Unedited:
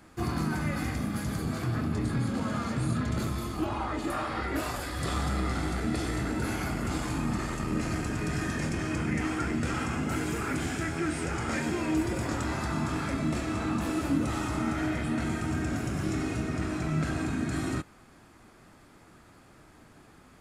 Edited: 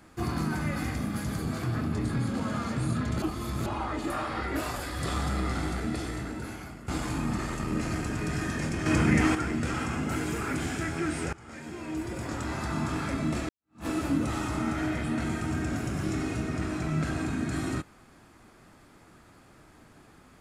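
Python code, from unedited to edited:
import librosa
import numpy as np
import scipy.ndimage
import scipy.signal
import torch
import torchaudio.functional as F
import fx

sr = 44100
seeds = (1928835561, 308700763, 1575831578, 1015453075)

y = fx.edit(x, sr, fx.reverse_span(start_s=3.22, length_s=0.44),
    fx.fade_out_to(start_s=5.64, length_s=1.24, floor_db=-15.5),
    fx.clip_gain(start_s=8.86, length_s=0.49, db=7.0),
    fx.fade_in_from(start_s=11.33, length_s=1.47, floor_db=-21.0),
    fx.fade_in_span(start_s=13.49, length_s=0.37, curve='exp'), tone=tone)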